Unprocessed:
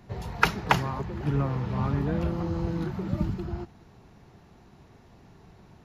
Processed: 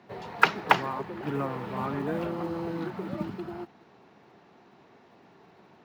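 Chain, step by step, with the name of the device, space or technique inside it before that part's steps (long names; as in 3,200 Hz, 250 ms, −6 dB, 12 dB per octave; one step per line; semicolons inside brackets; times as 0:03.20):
early digital voice recorder (band-pass filter 280–3,900 Hz; one scale factor per block 7 bits)
level +2 dB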